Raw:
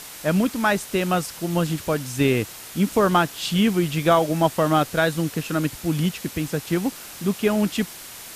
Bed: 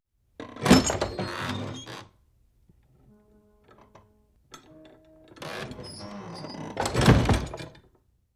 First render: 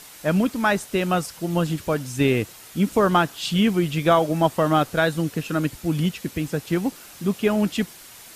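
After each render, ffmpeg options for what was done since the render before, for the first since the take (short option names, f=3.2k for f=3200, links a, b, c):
-af "afftdn=nr=6:nf=-39"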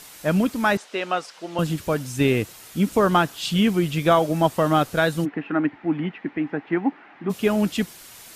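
-filter_complex "[0:a]asettb=1/sr,asplit=3[a][b][c];[a]atrim=end=0.774[d];[b]atrim=start=0.77:end=1.59,asetpts=PTS-STARTPTS,afade=t=in:d=0.004:c=qsin,afade=t=out:st=0.816:d=0.004:c=qsin,highpass=460,lowpass=4.8k[e];[c]atrim=start=1.586[f];[d][e]acrossfade=d=0.004:c1=hsin:c2=qsin[g];[g][f]acrossfade=d=0.004:c1=qsin:c2=hsin,asplit=3[h][i][j];[h]afade=t=out:st=5.24:d=0.02[k];[i]highpass=250,equalizer=f=290:t=q:w=4:g=7,equalizer=f=520:t=q:w=4:g=-7,equalizer=f=810:t=q:w=4:g=8,equalizer=f=1.9k:t=q:w=4:g=6,lowpass=f=2.3k:w=0.5412,lowpass=f=2.3k:w=1.3066,afade=t=in:st=5.24:d=0.02,afade=t=out:st=7.29:d=0.02[l];[j]afade=t=in:st=7.29:d=0.02[m];[k][l][m]amix=inputs=3:normalize=0"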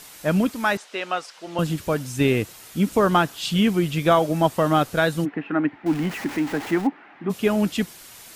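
-filter_complex "[0:a]asettb=1/sr,asplit=3[a][b][c];[a]atrim=end=0.514[d];[b]atrim=start=0.51:end=1.47,asetpts=PTS-STARTPTS,afade=t=in:d=0.004:c=qsin,afade=t=out:st=0.956:d=0.004:c=qsin,lowshelf=f=500:g=-6[e];[c]atrim=start=1.466[f];[d][e]acrossfade=d=0.004:c1=hsin:c2=qsin[g];[g][f]acrossfade=d=0.004:c1=qsin:c2=hsin,asettb=1/sr,asplit=3[h][i][j];[h]atrim=end=5.864[k];[i]atrim=start=5.86:end=6.87,asetpts=PTS-STARTPTS,afade=t=in:d=0.004:c=qsin,afade=t=out:st=1.006:d=0.004:c=qsin,aeval=exprs='val(0)+0.5*0.0335*sgn(val(0))':c=same[l];[j]atrim=start=6.866[m];[k][l]acrossfade=d=0.004:c1=hsin:c2=qsin[n];[n][m]acrossfade=d=0.004:c1=qsin:c2=hsin"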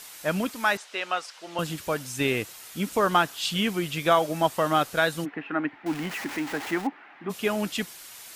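-af "lowshelf=f=460:g=-10.5"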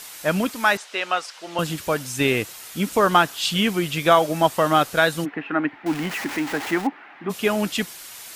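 -af "volume=5dB"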